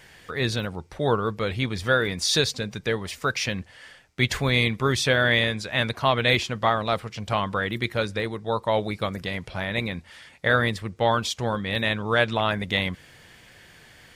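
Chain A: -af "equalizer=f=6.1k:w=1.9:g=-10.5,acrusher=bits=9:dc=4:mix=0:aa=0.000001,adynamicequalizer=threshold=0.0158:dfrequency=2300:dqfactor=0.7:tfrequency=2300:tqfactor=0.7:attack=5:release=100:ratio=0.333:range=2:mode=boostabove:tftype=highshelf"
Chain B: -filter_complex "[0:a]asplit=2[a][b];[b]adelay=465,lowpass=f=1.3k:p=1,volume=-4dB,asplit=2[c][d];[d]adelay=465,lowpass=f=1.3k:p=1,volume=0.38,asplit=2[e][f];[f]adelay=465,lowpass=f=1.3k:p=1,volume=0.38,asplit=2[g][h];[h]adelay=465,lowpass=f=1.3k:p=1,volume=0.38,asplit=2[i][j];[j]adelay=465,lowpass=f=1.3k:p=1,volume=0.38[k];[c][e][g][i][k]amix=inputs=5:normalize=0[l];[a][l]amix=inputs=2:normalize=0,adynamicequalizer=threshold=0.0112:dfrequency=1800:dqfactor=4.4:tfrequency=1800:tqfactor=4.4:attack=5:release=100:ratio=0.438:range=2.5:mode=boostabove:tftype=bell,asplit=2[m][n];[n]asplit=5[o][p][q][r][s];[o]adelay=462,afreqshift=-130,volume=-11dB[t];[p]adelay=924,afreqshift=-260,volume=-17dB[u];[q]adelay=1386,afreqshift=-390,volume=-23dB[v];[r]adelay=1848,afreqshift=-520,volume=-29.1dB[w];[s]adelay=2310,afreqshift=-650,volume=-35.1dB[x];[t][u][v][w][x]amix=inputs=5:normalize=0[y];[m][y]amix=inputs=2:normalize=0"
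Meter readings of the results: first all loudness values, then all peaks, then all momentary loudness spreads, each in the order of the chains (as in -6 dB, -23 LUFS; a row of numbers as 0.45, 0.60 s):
-24.0, -23.0 LUFS; -5.0, -4.5 dBFS; 9, 10 LU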